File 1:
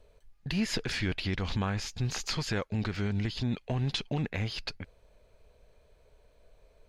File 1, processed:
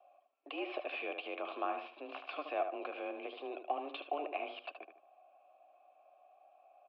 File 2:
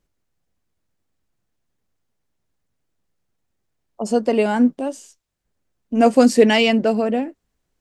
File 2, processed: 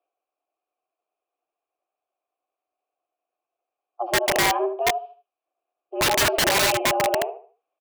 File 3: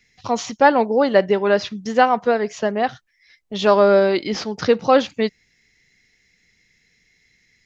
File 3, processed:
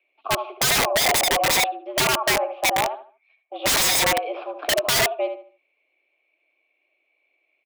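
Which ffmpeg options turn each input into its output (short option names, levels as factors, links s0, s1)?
-filter_complex "[0:a]highpass=f=160:t=q:w=0.5412,highpass=f=160:t=q:w=1.307,lowpass=f=3400:t=q:w=0.5176,lowpass=f=3400:t=q:w=0.7071,lowpass=f=3400:t=q:w=1.932,afreqshift=140,asplit=3[s0][s1][s2];[s0]bandpass=f=730:t=q:w=8,volume=1[s3];[s1]bandpass=f=1090:t=q:w=8,volume=0.501[s4];[s2]bandpass=f=2440:t=q:w=8,volume=0.355[s5];[s3][s4][s5]amix=inputs=3:normalize=0,asplit=2[s6][s7];[s7]adelay=75,lowpass=f=2800:p=1,volume=0.447,asplit=2[s8][s9];[s9]adelay=75,lowpass=f=2800:p=1,volume=0.31,asplit=2[s10][s11];[s11]adelay=75,lowpass=f=2800:p=1,volume=0.31,asplit=2[s12][s13];[s13]adelay=75,lowpass=f=2800:p=1,volume=0.31[s14];[s8][s10][s12][s14]amix=inputs=4:normalize=0[s15];[s6][s15]amix=inputs=2:normalize=0,aeval=exprs='(mod(11.9*val(0)+1,2)-1)/11.9':c=same,volume=2.24"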